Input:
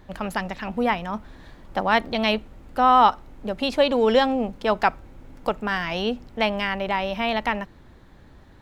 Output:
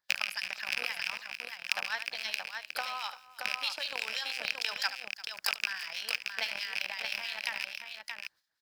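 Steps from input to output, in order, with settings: rattling part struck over -35 dBFS, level -16 dBFS; gate -42 dBFS, range -18 dB; differentiator; harmonic-percussive split harmonic -4 dB; thirty-one-band EQ 250 Hz -10 dB, 400 Hz -10 dB, 1600 Hz +7 dB, 5000 Hz +12 dB; in parallel at +2 dB: negative-ratio compressor -43 dBFS, ratio -1; on the sum: transient shaper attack +12 dB, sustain -3 dB; harmonic tremolo 6.1 Hz, depth 70%, crossover 1800 Hz; on a send: tapped delay 73/345/625 ms -13/-18/-5.5 dB; on the sum: gain -5 dB

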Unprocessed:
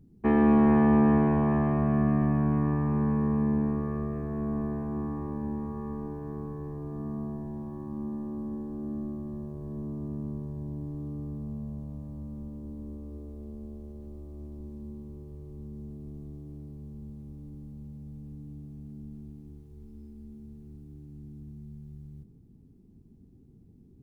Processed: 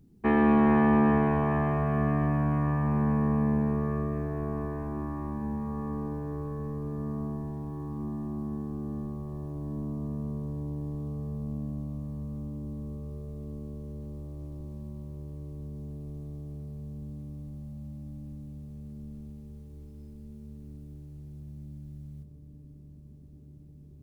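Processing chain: tilt shelf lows -4 dB, about 890 Hz; on a send: dark delay 0.861 s, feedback 81%, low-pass 520 Hz, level -12 dB; on the sum: gain +2 dB

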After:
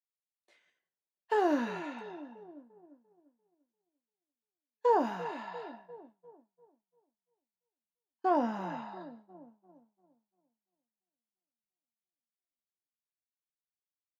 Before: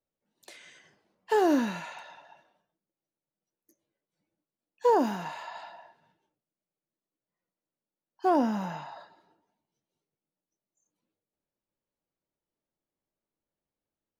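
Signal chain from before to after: LPF 1800 Hz 6 dB/oct; low shelf 410 Hz -9.5 dB; doubler 17 ms -11 dB; dark delay 0.345 s, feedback 69%, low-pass 520 Hz, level -12.5 dB; expander -45 dBFS

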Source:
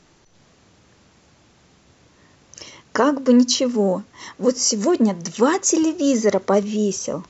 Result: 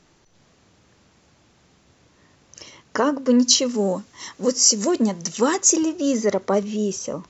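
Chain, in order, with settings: 3.43–5.75 high shelf 3700 Hz -> 5500 Hz +11 dB; gain -3 dB

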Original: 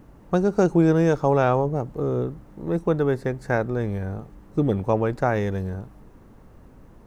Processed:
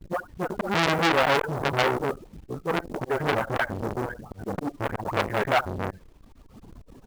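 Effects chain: slices in reverse order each 0.123 s, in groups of 3; running mean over 8 samples; spectral gate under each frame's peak -30 dB strong; dispersion highs, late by 95 ms, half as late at 650 Hz; auto swell 0.161 s; reverb removal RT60 1.3 s; echo 73 ms -19.5 dB; companded quantiser 6-bit; phaser 1.2 Hz, delay 4.4 ms, feedback 27%; gate with hold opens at -46 dBFS; core saturation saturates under 3400 Hz; gain +6 dB

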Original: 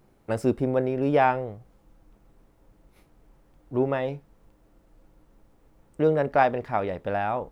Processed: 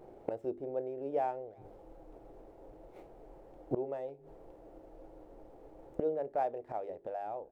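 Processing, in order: median filter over 9 samples; band shelf 510 Hz +13 dB; notches 50/100/150/200/250/300/350/400 Hz; flipped gate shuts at -19 dBFS, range -24 dB; speakerphone echo 0.35 s, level -28 dB

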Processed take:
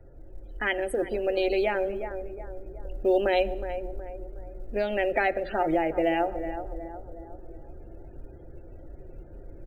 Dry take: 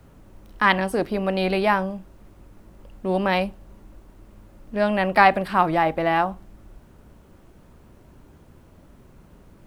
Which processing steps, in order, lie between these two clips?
low shelf 290 Hz +5 dB; tape echo 0.367 s, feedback 49%, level -13 dB, low-pass 1400 Hz; loudest bins only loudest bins 64; fixed phaser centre 450 Hz, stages 4; compressor 2.5:1, threshold -26 dBFS, peak gain reduction 8 dB; comb 5.7 ms, depth 36%; on a send at -22 dB: reverb RT60 1.1 s, pre-delay 48 ms; on the sum: vocal rider within 3 dB 2 s; notches 60/120/180/240/300/360 Hz; short-mantissa float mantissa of 6-bit; gain +2 dB

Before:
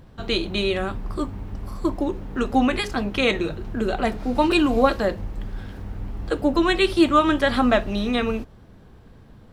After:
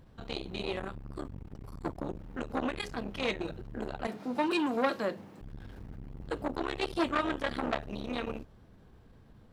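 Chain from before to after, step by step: 1.24–2.18 octaver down 1 oct, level -3 dB; 4.07–5.41 HPF 150 Hz 24 dB/oct; core saturation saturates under 1300 Hz; gain -8.5 dB

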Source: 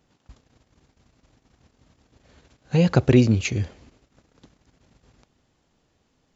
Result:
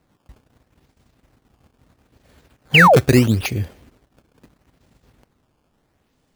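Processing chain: decimation with a swept rate 13×, swing 160% 0.76 Hz; painted sound fall, 2.74–2.97, 400–3200 Hz -12 dBFS; gain +2 dB

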